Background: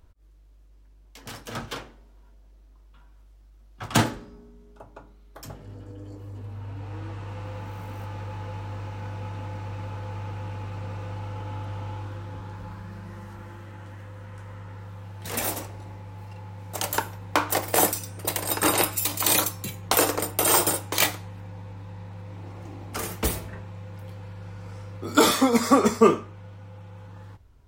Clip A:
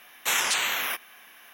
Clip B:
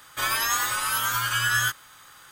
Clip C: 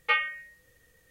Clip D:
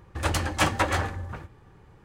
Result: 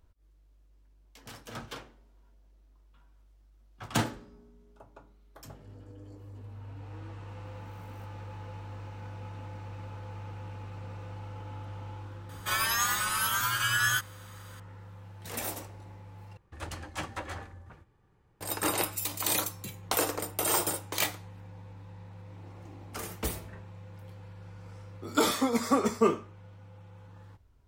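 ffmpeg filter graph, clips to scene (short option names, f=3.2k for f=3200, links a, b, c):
-filter_complex "[0:a]volume=-7.5dB,asplit=2[a][b];[a]atrim=end=16.374[c];[4:a]atrim=end=2.04,asetpts=PTS-STARTPTS,volume=-14dB[d];[b]atrim=start=18.406[e];[2:a]atrim=end=2.31,asetpts=PTS-STARTPTS,volume=-3.5dB,afade=t=in:d=0.004:c=hsin,afade=t=out:st=2.306:d=0.004:c=hsin,adelay=12290[f];[c][d]acrossfade=d=0.004:c1=hsin:c2=hsin[g];[g][e]acrossfade=d=0.004:c1=hsin:c2=hsin[h];[h][f]amix=inputs=2:normalize=0"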